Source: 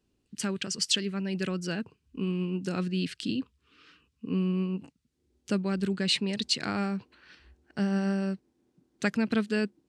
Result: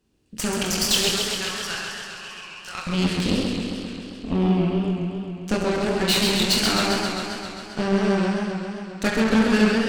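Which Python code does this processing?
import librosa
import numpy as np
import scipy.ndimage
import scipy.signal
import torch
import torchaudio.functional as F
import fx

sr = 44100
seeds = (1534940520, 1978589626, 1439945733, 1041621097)

p1 = fx.cheby2_highpass(x, sr, hz=250.0, order=4, stop_db=60, at=(1.09, 2.87))
p2 = fx.room_early_taps(p1, sr, ms=(23, 67), db=(-5.5, -10.5))
p3 = 10.0 ** (-22.5 / 20.0) * np.tanh(p2 / 10.0 ** (-22.5 / 20.0))
p4 = p2 + (p3 * 10.0 ** (-4.0 / 20.0))
p5 = fx.rev_schroeder(p4, sr, rt60_s=1.3, comb_ms=29, drr_db=3.5)
p6 = fx.cheby_harmonics(p5, sr, harmonics=(8,), levels_db=(-16,), full_scale_db=-9.0)
y = fx.echo_warbled(p6, sr, ms=133, feedback_pct=74, rate_hz=2.8, cents=141, wet_db=-5.0)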